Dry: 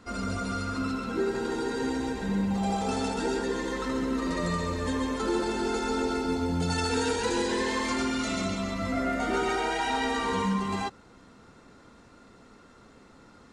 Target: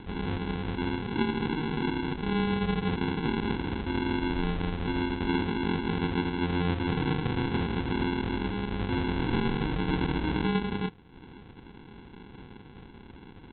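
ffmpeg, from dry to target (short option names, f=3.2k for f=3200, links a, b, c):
-af "acompressor=mode=upward:threshold=-39dB:ratio=2.5,aresample=8000,acrusher=samples=13:mix=1:aa=0.000001,aresample=44100"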